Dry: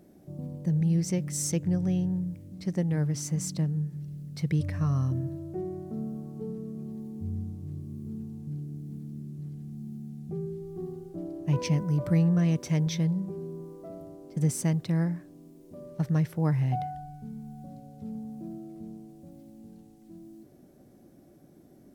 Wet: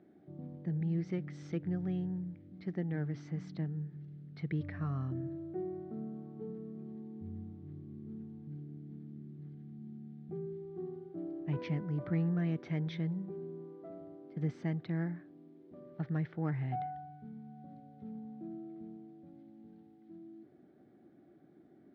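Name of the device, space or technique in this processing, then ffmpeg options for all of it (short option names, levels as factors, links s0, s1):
overdrive pedal into a guitar cabinet: -filter_complex "[0:a]asplit=2[s0][s1];[s1]highpass=f=720:p=1,volume=3.98,asoftclip=type=tanh:threshold=0.2[s2];[s0][s2]amix=inputs=2:normalize=0,lowpass=f=1800:p=1,volume=0.501,highpass=78,equalizer=f=330:t=q:w=4:g=3,equalizer=f=550:t=q:w=4:g=-9,equalizer=f=1000:t=q:w=4:g=-9,equalizer=f=2700:t=q:w=4:g=-7,lowpass=f=3500:w=0.5412,lowpass=f=3500:w=1.3066,volume=0.501"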